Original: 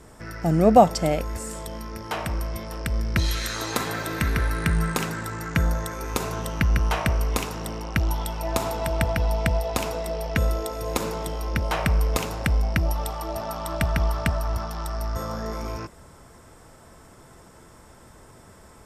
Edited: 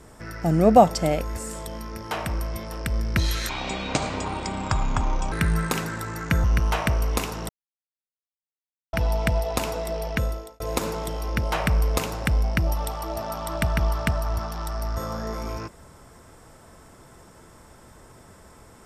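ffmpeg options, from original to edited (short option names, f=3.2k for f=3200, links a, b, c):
-filter_complex "[0:a]asplit=7[a][b][c][d][e][f][g];[a]atrim=end=3.494[h];[b]atrim=start=3.49:end=4.57,asetpts=PTS-STARTPTS,asetrate=26019,aresample=44100,atrim=end_sample=80725,asetpts=PTS-STARTPTS[i];[c]atrim=start=4.566:end=5.692[j];[d]atrim=start=6.628:end=7.68,asetpts=PTS-STARTPTS,afade=t=out:st=1.048:d=0.004:c=hsin[k];[e]atrim=start=7.68:end=9.12,asetpts=PTS-STARTPTS,volume=0[l];[f]atrim=start=9.12:end=10.79,asetpts=PTS-STARTPTS,afade=t=in:d=0.004:c=hsin,afade=t=out:st=1.15:d=0.52[m];[g]atrim=start=10.79,asetpts=PTS-STARTPTS,afade=t=in:d=0.004:c=hsin[n];[h][i]acrossfade=d=0.004:c1=hsin:c2=hsin[o];[o][j]acrossfade=d=0.004:c1=hsin:c2=hsin[p];[k][l][m][n]concat=n=4:v=0:a=1[q];[p][q]acrossfade=d=0.004:c1=hsin:c2=hsin"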